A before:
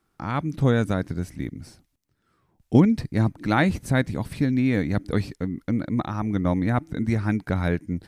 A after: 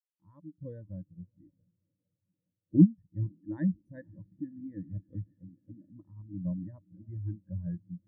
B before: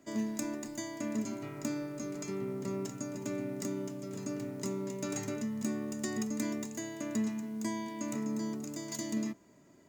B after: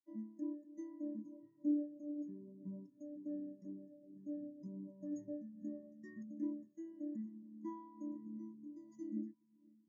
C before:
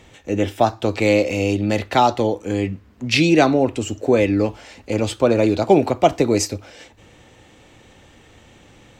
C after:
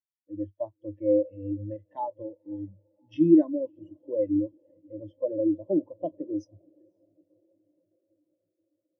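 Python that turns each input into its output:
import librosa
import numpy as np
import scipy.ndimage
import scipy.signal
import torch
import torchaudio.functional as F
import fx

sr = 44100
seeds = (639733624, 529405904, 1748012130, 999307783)

p1 = fx.ripple_eq(x, sr, per_octave=1.2, db=11)
p2 = p1 + fx.echo_diffused(p1, sr, ms=521, feedback_pct=80, wet_db=-14.0, dry=0)
p3 = fx.spectral_expand(p2, sr, expansion=2.5)
y = p3 * 10.0 ** (-7.0 / 20.0)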